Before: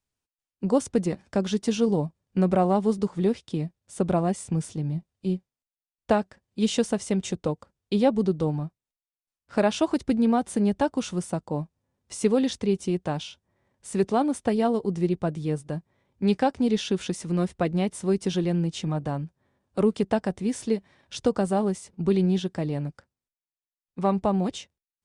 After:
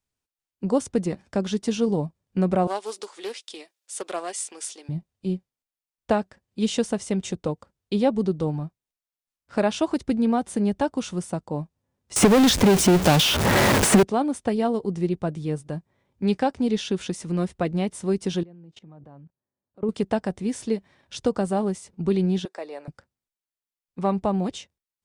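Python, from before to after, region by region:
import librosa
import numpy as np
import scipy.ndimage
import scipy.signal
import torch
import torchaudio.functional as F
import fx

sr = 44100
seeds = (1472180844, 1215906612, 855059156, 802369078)

y = fx.chain(x, sr, fx.cheby2_highpass(hz=170.0, order=4, stop_db=40),
    fx.tilt_shelf(db=-9.0, hz=1200.0),
    fx.doppler_dist(depth_ms=0.12), at=(2.67, 4.89))
y = fx.chain(y, sr, fx.zero_step(step_db=-32.5),
    fx.leveller(passes=3),
    fx.band_squash(depth_pct=100), at=(12.16, 14.03))
y = fx.chain(y, sr, fx.lowpass(hz=1000.0, slope=6),
    fx.low_shelf(hz=110.0, db=-8.5),
    fx.level_steps(step_db=23), at=(18.43, 19.89))
y = fx.chain(y, sr, fx.highpass(hz=440.0, slope=24),
    fx.high_shelf(hz=8000.0, db=-4.5),
    fx.notch(hz=3100.0, q=6.7), at=(22.45, 22.88))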